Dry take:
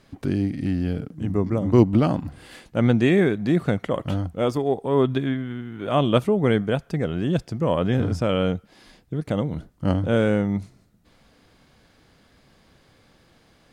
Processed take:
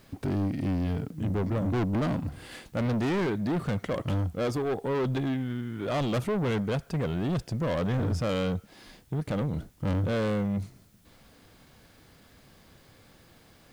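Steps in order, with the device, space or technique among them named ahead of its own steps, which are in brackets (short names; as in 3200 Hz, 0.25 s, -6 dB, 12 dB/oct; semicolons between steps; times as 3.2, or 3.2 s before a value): open-reel tape (soft clip -25 dBFS, distortion -6 dB; bell 100 Hz +2.5 dB; white noise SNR 37 dB)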